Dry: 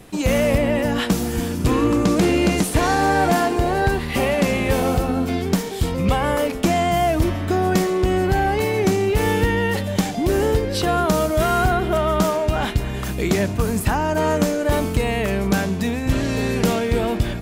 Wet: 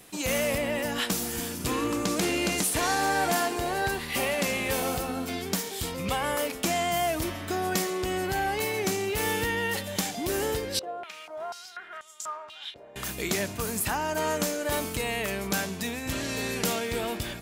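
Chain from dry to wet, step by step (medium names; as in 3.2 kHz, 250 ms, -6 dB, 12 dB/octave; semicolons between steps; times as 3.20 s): tilt EQ +2.5 dB/octave; 10.79–12.96 s: step-sequenced band-pass 4.1 Hz 570–7300 Hz; trim -7 dB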